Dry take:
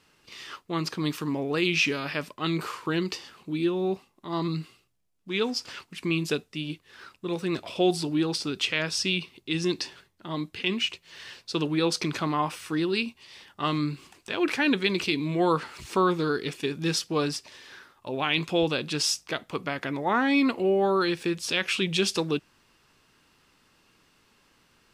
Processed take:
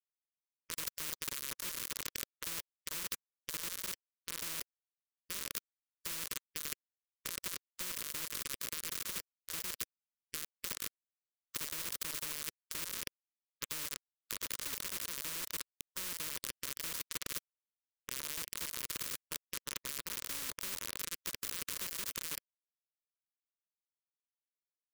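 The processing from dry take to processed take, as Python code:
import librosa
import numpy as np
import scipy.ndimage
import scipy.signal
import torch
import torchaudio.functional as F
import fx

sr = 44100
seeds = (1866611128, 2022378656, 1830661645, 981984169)

p1 = fx.rattle_buzz(x, sr, strikes_db=-35.0, level_db=-15.0)
p2 = p1 + fx.echo_single(p1, sr, ms=493, db=-18.0, dry=0)
p3 = fx.clip_asym(p2, sr, top_db=-19.0, bottom_db=-12.0)
p4 = fx.tone_stack(p3, sr, knobs='10-0-1')
p5 = fx.rev_fdn(p4, sr, rt60_s=2.2, lf_ratio=1.3, hf_ratio=0.45, size_ms=10.0, drr_db=16.5)
p6 = fx.level_steps(p5, sr, step_db=11)
p7 = fx.hum_notches(p6, sr, base_hz=50, count=3)
p8 = fx.quant_dither(p7, sr, seeds[0], bits=8, dither='none')
p9 = scipy.signal.sosfilt(scipy.signal.cheby1(2, 1.0, [430.0, 1300.0], 'bandstop', fs=sr, output='sos'), p8)
p10 = fx.quant_companded(p9, sr, bits=8)
p11 = fx.spectral_comp(p10, sr, ratio=10.0)
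y = p11 * 10.0 ** (17.0 / 20.0)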